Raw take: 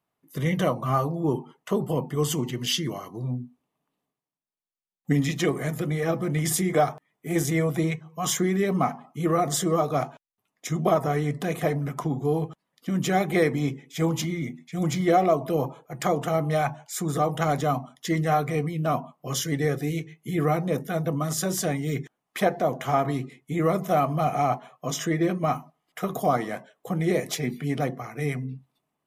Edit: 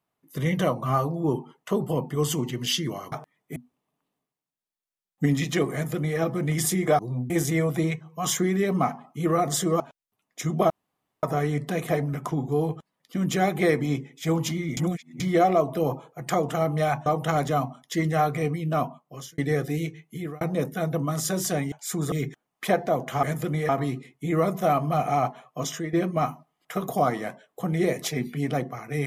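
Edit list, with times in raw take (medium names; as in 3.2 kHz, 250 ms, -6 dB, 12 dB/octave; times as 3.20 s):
3.12–3.43 s: swap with 6.86–7.30 s
5.60–6.06 s: copy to 22.96 s
9.80–10.06 s: delete
10.96 s: insert room tone 0.53 s
14.50–14.93 s: reverse
16.79–17.19 s: move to 21.85 s
18.93–19.51 s: fade out
20.16–20.54 s: fade out
24.87–25.20 s: fade out, to -10 dB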